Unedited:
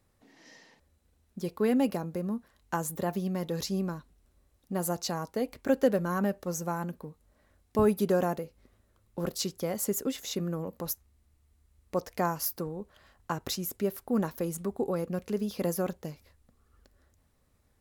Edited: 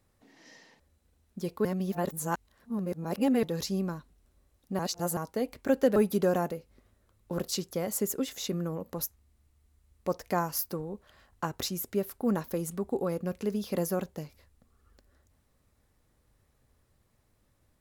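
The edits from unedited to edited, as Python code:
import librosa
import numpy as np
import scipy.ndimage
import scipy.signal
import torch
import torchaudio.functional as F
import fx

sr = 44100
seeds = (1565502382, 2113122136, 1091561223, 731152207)

y = fx.edit(x, sr, fx.reverse_span(start_s=1.65, length_s=1.78),
    fx.reverse_span(start_s=4.79, length_s=0.38),
    fx.cut(start_s=5.96, length_s=1.87), tone=tone)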